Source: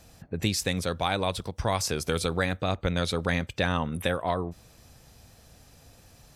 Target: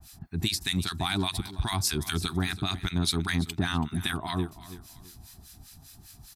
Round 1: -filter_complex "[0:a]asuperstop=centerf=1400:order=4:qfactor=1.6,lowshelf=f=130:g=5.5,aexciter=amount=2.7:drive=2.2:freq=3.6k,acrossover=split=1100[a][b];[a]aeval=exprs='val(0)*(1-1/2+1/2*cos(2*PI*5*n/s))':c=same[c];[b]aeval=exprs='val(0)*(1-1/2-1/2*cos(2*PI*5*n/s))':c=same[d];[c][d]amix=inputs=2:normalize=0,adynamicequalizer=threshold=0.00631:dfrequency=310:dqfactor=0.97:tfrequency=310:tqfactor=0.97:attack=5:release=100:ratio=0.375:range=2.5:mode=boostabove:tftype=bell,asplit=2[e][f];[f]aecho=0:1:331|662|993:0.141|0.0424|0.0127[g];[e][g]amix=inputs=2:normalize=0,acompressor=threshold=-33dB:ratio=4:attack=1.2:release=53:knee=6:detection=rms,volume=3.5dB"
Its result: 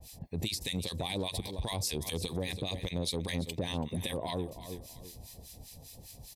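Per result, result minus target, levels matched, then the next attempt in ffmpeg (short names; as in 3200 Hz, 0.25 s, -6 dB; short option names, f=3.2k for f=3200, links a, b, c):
compressor: peak gain reduction +9.5 dB; 500 Hz band +7.5 dB
-filter_complex "[0:a]asuperstop=centerf=1400:order=4:qfactor=1.6,lowshelf=f=130:g=5.5,aexciter=amount=2.7:drive=2.2:freq=3.6k,acrossover=split=1100[a][b];[a]aeval=exprs='val(0)*(1-1/2+1/2*cos(2*PI*5*n/s))':c=same[c];[b]aeval=exprs='val(0)*(1-1/2-1/2*cos(2*PI*5*n/s))':c=same[d];[c][d]amix=inputs=2:normalize=0,adynamicequalizer=threshold=0.00631:dfrequency=310:dqfactor=0.97:tfrequency=310:tqfactor=0.97:attack=5:release=100:ratio=0.375:range=2.5:mode=boostabove:tftype=bell,asplit=2[e][f];[f]aecho=0:1:331|662|993:0.141|0.0424|0.0127[g];[e][g]amix=inputs=2:normalize=0,acompressor=threshold=-22.5dB:ratio=4:attack=1.2:release=53:knee=6:detection=rms,volume=3.5dB"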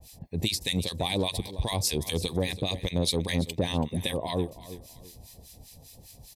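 500 Hz band +8.0 dB
-filter_complex "[0:a]asuperstop=centerf=520:order=4:qfactor=1.6,lowshelf=f=130:g=5.5,aexciter=amount=2.7:drive=2.2:freq=3.6k,acrossover=split=1100[a][b];[a]aeval=exprs='val(0)*(1-1/2+1/2*cos(2*PI*5*n/s))':c=same[c];[b]aeval=exprs='val(0)*(1-1/2-1/2*cos(2*PI*5*n/s))':c=same[d];[c][d]amix=inputs=2:normalize=0,adynamicequalizer=threshold=0.00631:dfrequency=310:dqfactor=0.97:tfrequency=310:tqfactor=0.97:attack=5:release=100:ratio=0.375:range=2.5:mode=boostabove:tftype=bell,asplit=2[e][f];[f]aecho=0:1:331|662|993:0.141|0.0424|0.0127[g];[e][g]amix=inputs=2:normalize=0,acompressor=threshold=-22.5dB:ratio=4:attack=1.2:release=53:knee=6:detection=rms,volume=3.5dB"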